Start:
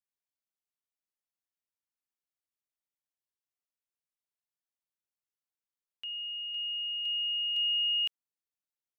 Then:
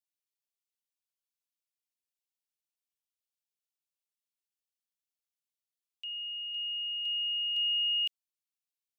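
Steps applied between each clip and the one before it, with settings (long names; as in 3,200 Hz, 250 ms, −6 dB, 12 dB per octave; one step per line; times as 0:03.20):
Butterworth high-pass 2,400 Hz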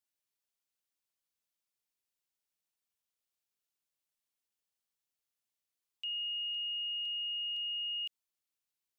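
brickwall limiter −36.5 dBFS, peak gain reduction 11 dB
level +2.5 dB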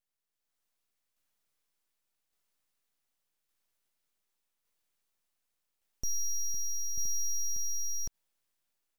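automatic gain control gain up to 9.5 dB
full-wave rectification
shaped tremolo saw down 0.86 Hz, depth 35%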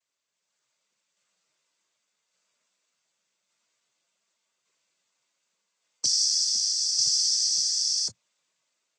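spectral tilt +2 dB per octave
cochlear-implant simulation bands 16
level +7 dB
AAC 32 kbit/s 32,000 Hz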